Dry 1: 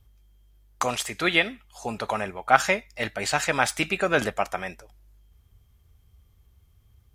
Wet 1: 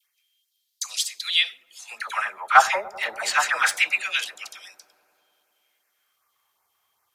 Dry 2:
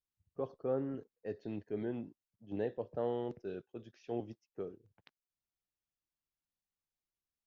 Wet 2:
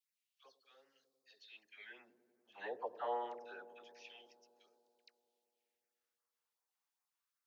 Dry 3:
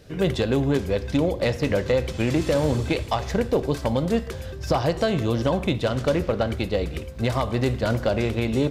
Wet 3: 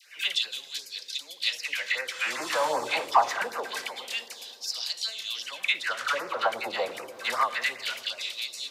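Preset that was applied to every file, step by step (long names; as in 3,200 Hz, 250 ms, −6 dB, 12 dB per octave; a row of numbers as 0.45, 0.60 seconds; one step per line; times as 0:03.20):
high-pass filter 60 Hz
auto-filter high-pass sine 0.26 Hz 880–4,300 Hz
all-pass dispersion lows, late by 73 ms, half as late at 990 Hz
auto-filter notch sine 2.6 Hz 280–3,500 Hz
in parallel at −10 dB: soft clipping −16 dBFS
on the sum: delay with a low-pass on its return 96 ms, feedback 82%, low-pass 430 Hz, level −9.5 dB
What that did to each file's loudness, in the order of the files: +3.0, −5.5, −5.0 LU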